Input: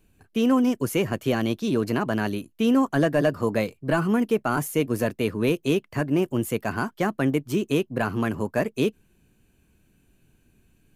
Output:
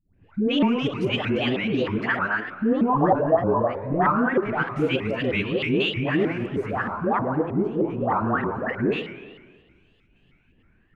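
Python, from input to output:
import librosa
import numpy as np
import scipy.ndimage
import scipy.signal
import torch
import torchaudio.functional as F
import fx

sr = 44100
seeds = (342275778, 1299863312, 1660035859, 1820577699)

y = fx.crossing_spikes(x, sr, level_db=-28.0, at=(6.05, 6.83))
y = fx.volume_shaper(y, sr, bpm=133, per_beat=1, depth_db=-13, release_ms=87.0, shape='slow start')
y = fx.dispersion(y, sr, late='highs', ms=144.0, hz=630.0)
y = fx.tilt_shelf(y, sr, db=-9.0, hz=1400.0, at=(1.98, 2.49))
y = fx.backlash(y, sr, play_db=-35.0, at=(4.4, 5.05))
y = fx.filter_lfo_lowpass(y, sr, shape='sine', hz=0.23, low_hz=910.0, high_hz=3000.0, q=3.2)
y = fx.echo_feedback(y, sr, ms=111, feedback_pct=42, wet_db=-13.0)
y = fx.rev_spring(y, sr, rt60_s=1.6, pass_ms=(44, 55), chirp_ms=75, drr_db=9.5)
y = fx.vibrato_shape(y, sr, shape='saw_up', rate_hz=3.2, depth_cents=250.0)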